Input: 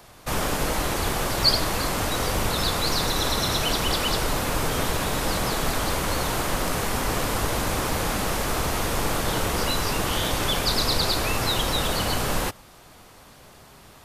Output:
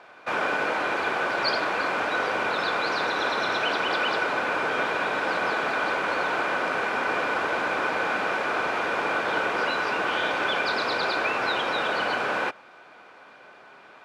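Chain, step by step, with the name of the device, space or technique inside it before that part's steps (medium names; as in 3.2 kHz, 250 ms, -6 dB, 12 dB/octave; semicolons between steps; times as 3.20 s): tin-can telephone (band-pass 400–2400 Hz; small resonant body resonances 1.5/2.4 kHz, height 12 dB, ringing for 40 ms); trim +2 dB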